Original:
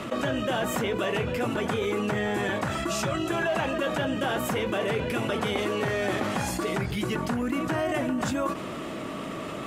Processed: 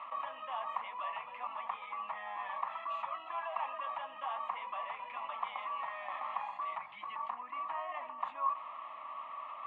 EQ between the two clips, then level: ladder band-pass 1200 Hz, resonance 65%; air absorption 120 m; fixed phaser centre 1500 Hz, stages 6; +4.5 dB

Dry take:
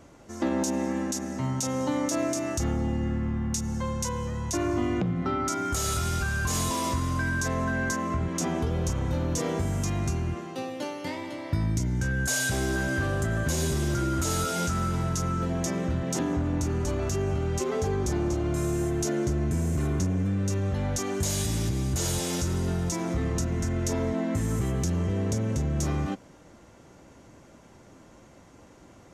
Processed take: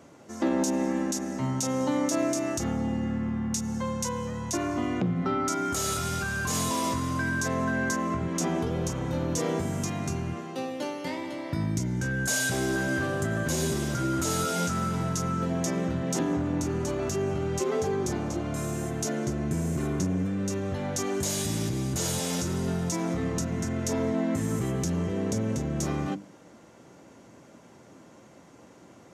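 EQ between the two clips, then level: HPF 150 Hz 12 dB/oct; low shelf 340 Hz +4 dB; notches 50/100/150/200/250/300/350 Hz; 0.0 dB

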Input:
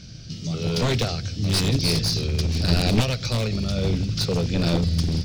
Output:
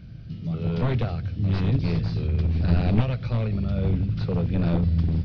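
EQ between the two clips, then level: air absorption 220 m; tape spacing loss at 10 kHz 31 dB; bell 400 Hz -4.5 dB 1.6 oct; +1.5 dB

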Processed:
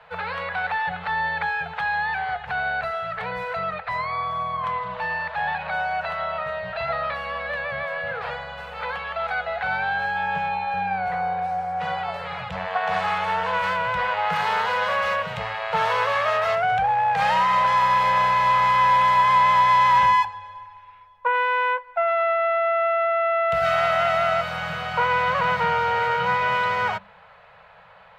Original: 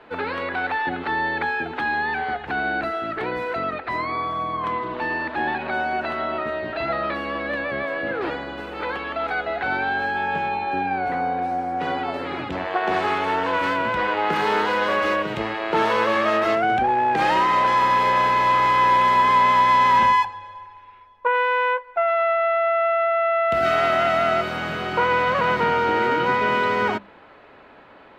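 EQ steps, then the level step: Chebyshev band-stop 190–460 Hz, order 4; bell 480 Hz -4.5 dB 0.6 oct; 0.0 dB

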